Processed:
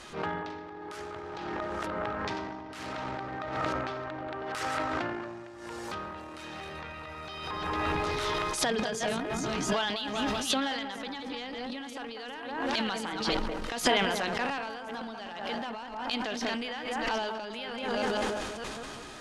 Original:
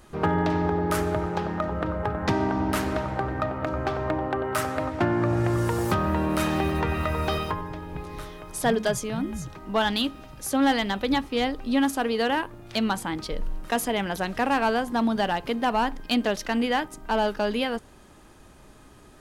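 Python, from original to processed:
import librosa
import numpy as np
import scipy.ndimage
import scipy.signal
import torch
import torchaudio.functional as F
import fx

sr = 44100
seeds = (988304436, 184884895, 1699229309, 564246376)

y = fx.reverse_delay(x, sr, ms=466, wet_db=-10.5)
y = fx.echo_wet_lowpass(y, sr, ms=192, feedback_pct=35, hz=1400.0, wet_db=-4.5)
y = fx.over_compress(y, sr, threshold_db=-31.0, ratio=-0.5)
y = fx.low_shelf(y, sr, hz=190.0, db=-11.5)
y = fx.transient(y, sr, attack_db=-3, sustain_db=5)
y = fx.high_shelf(y, sr, hz=2300.0, db=12.0)
y = fx.transient(y, sr, attack_db=-8, sustain_db=10)
y = scipy.signal.sosfilt(scipy.signal.butter(2, 5000.0, 'lowpass', fs=sr, output='sos'), y)
y = fx.sustainer(y, sr, db_per_s=31.0)
y = F.gain(torch.from_numpy(y), -2.0).numpy()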